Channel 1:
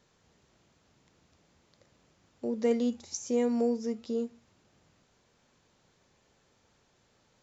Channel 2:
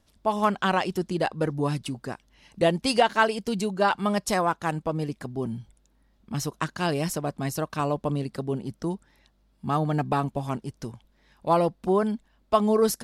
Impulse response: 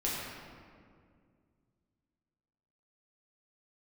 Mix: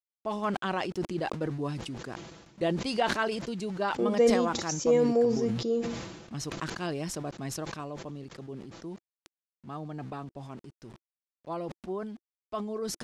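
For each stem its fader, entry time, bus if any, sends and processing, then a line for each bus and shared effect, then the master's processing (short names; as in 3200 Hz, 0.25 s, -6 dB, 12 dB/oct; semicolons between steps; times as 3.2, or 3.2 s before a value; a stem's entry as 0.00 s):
+2.0 dB, 1.55 s, no send, gate with hold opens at -57 dBFS; comb 6 ms, depth 51%
7.55 s -8.5 dB -> 7.95 s -15 dB, 0.00 s, no send, notch 870 Hz, Q 24; sample gate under -41.5 dBFS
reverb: off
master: LPF 7200 Hz 12 dB/oct; bell 340 Hz +4.5 dB 0.48 oct; sustainer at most 47 dB/s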